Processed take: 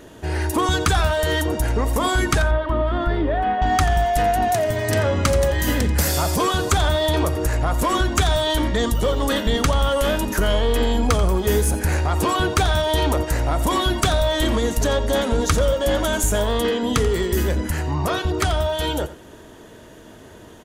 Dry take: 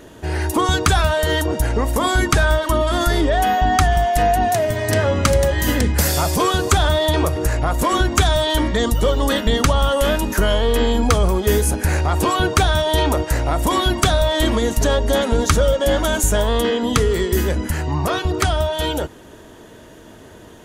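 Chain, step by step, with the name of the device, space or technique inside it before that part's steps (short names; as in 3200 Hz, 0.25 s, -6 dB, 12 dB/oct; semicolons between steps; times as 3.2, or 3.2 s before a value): parallel distortion (in parallel at -6 dB: hard clip -17.5 dBFS, distortion -9 dB); 2.42–3.62 on the sum: air absorption 450 m; echo 87 ms -14.5 dB; gain -5 dB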